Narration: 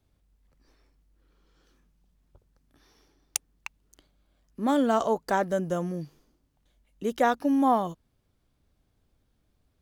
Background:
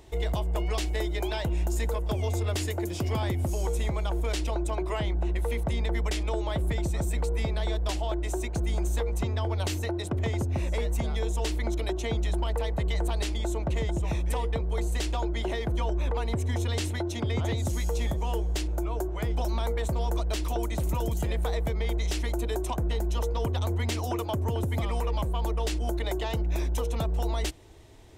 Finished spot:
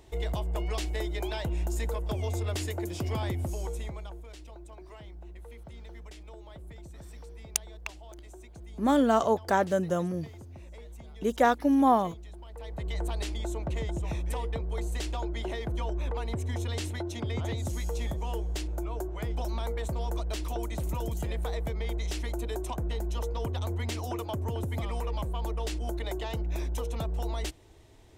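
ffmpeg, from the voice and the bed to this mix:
-filter_complex "[0:a]adelay=4200,volume=0.5dB[a];[1:a]volume=11dB,afade=t=out:st=3.32:d=0.93:silence=0.177828,afade=t=in:st=12.51:d=0.51:silence=0.199526[b];[a][b]amix=inputs=2:normalize=0"

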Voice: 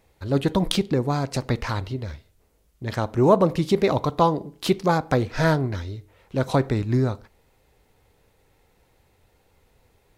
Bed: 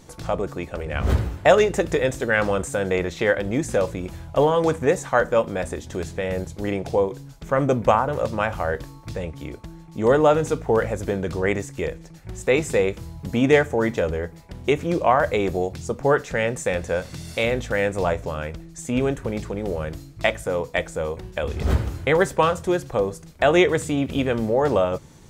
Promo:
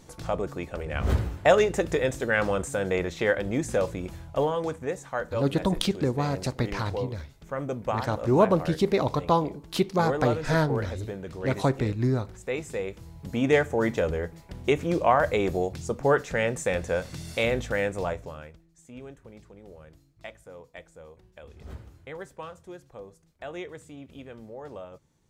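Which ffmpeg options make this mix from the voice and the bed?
-filter_complex "[0:a]adelay=5100,volume=-3.5dB[a];[1:a]volume=4.5dB,afade=t=out:st=4.07:d=0.7:silence=0.421697,afade=t=in:st=12.85:d=1.03:silence=0.375837,afade=t=out:st=17.6:d=1.02:silence=0.125893[b];[a][b]amix=inputs=2:normalize=0"

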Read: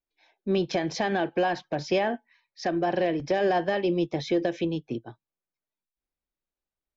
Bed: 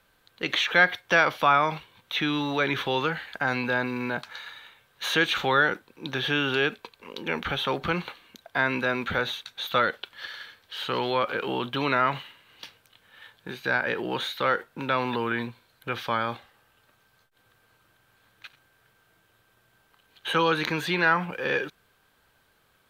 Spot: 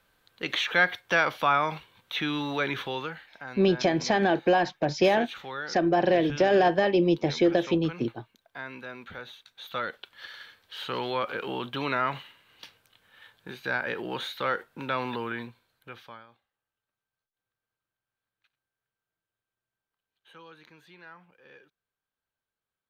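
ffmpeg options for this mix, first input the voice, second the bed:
-filter_complex "[0:a]adelay=3100,volume=3dB[a];[1:a]volume=7.5dB,afade=t=out:st=2.62:d=0.7:silence=0.266073,afade=t=in:st=9.36:d=1.12:silence=0.298538,afade=t=out:st=15.06:d=1.21:silence=0.0707946[b];[a][b]amix=inputs=2:normalize=0"

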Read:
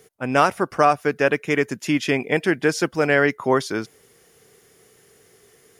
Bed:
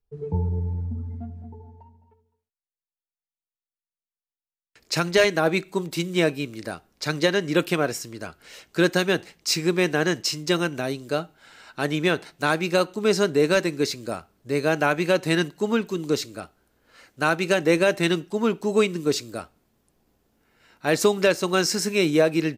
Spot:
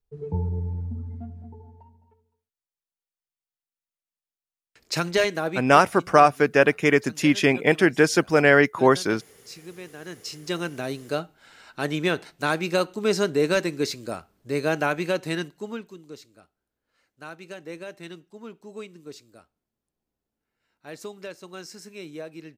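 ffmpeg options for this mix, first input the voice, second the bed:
-filter_complex "[0:a]adelay=5350,volume=1.5dB[a];[1:a]volume=15.5dB,afade=t=out:st=5.05:d=0.9:silence=0.133352,afade=t=in:st=10:d=0.99:silence=0.133352,afade=t=out:st=14.74:d=1.29:silence=0.149624[b];[a][b]amix=inputs=2:normalize=0"

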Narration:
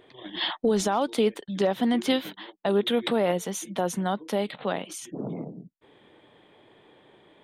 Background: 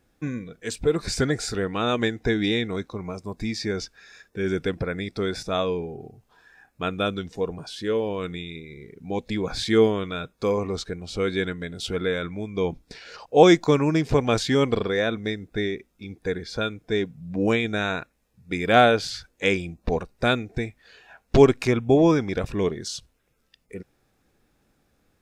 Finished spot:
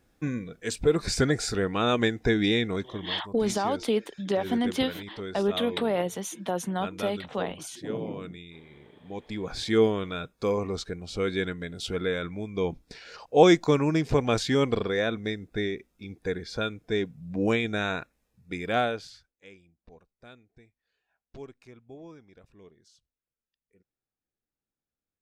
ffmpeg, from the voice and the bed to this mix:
-filter_complex "[0:a]adelay=2700,volume=-2.5dB[a];[1:a]volume=7dB,afade=t=out:st=2.71:d=0.55:silence=0.316228,afade=t=in:st=9.1:d=0.76:silence=0.421697,afade=t=out:st=18.1:d=1.24:silence=0.0530884[b];[a][b]amix=inputs=2:normalize=0"

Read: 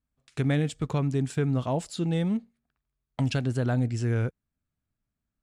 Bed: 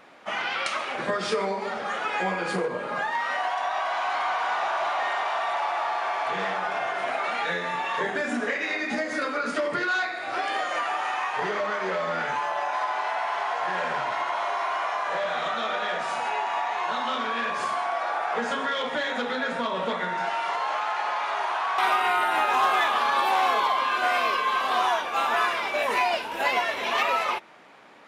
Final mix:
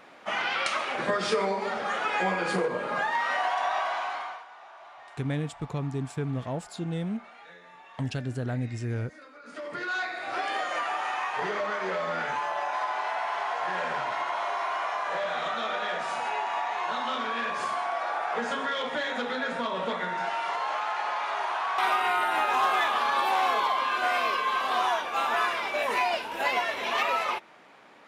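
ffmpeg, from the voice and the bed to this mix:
-filter_complex "[0:a]adelay=4800,volume=-5dB[a];[1:a]volume=19.5dB,afade=t=out:st=3.73:d=0.72:silence=0.0794328,afade=t=in:st=9.42:d=0.75:silence=0.105925[b];[a][b]amix=inputs=2:normalize=0"

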